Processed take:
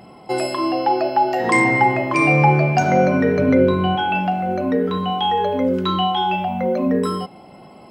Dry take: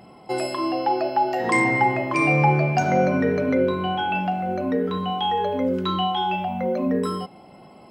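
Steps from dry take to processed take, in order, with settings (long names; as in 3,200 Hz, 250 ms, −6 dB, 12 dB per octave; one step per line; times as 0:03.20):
0:03.39–0:03.96: low-shelf EQ 190 Hz +8.5 dB
level +4 dB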